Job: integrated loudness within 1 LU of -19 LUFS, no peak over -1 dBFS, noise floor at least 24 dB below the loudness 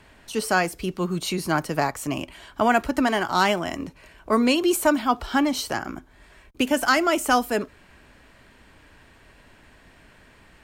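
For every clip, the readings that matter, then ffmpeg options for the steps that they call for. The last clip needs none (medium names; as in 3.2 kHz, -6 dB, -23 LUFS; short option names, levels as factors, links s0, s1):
loudness -23.0 LUFS; peak level -6.5 dBFS; loudness target -19.0 LUFS
-> -af "volume=1.58"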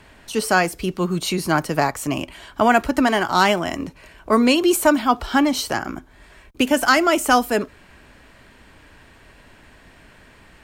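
loudness -19.5 LUFS; peak level -2.5 dBFS; noise floor -50 dBFS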